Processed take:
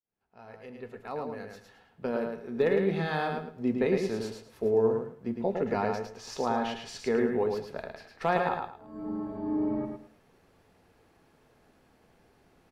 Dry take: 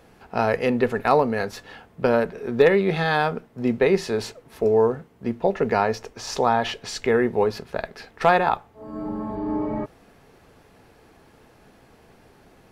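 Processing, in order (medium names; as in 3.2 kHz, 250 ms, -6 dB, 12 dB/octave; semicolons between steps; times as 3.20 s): fade-in on the opening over 3.20 s; dynamic bell 250 Hz, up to +6 dB, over -33 dBFS, Q 0.81; flange 0.21 Hz, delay 9.4 ms, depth 3.5 ms, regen -74%; on a send: feedback delay 108 ms, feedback 24%, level -4.5 dB; on the sum: trim -7 dB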